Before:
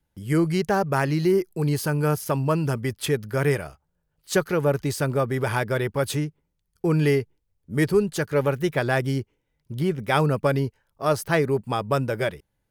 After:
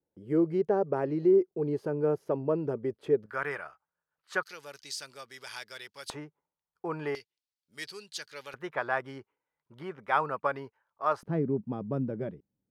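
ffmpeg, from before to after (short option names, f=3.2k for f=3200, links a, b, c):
-af "asetnsamples=n=441:p=0,asendcmd='3.26 bandpass f 1300;4.43 bandpass f 4900;6.1 bandpass f 950;7.15 bandpass f 4400;8.54 bandpass f 1100;11.23 bandpass f 230',bandpass=f=430:t=q:w=1.9:csg=0"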